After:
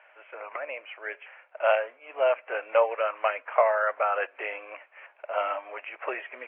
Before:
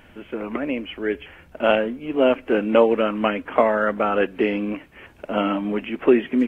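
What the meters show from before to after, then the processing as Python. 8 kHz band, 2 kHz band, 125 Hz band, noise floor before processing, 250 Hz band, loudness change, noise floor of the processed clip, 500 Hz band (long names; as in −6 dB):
can't be measured, −3.5 dB, below −40 dB, −50 dBFS, below −30 dB, −6.5 dB, −59 dBFS, −7.0 dB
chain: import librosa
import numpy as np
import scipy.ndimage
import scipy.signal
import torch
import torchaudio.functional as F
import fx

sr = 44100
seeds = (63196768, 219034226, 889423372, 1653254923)

y = scipy.signal.sosfilt(scipy.signal.ellip(3, 1.0, 50, [590.0, 2500.0], 'bandpass', fs=sr, output='sos'), x)
y = F.gain(torch.from_numpy(y), -2.5).numpy()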